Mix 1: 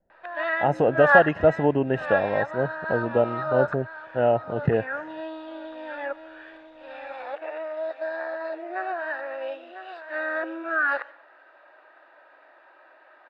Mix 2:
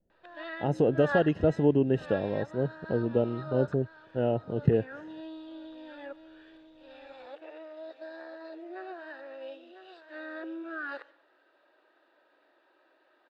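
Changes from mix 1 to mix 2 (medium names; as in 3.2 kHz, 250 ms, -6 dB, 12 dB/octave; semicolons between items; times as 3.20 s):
background -3.0 dB; master: add high-order bell 1.2 kHz -11.5 dB 2.4 oct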